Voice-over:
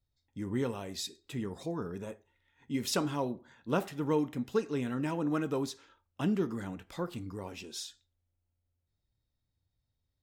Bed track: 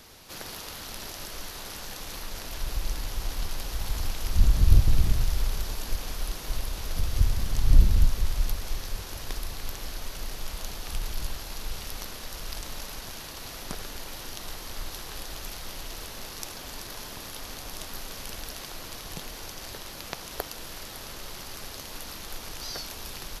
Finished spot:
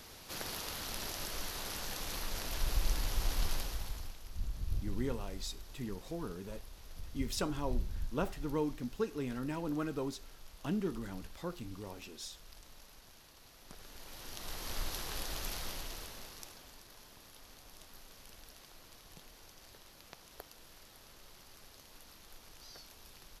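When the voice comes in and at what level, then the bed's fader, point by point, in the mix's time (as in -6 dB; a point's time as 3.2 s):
4.45 s, -5.0 dB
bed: 3.54 s -2 dB
4.22 s -19 dB
13.58 s -19 dB
14.71 s -2 dB
15.61 s -2 dB
16.81 s -17 dB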